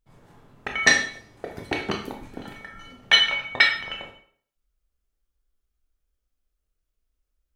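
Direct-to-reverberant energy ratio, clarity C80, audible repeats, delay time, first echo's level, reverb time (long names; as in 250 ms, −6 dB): 1.5 dB, 10.5 dB, no echo audible, no echo audible, no echo audible, 0.55 s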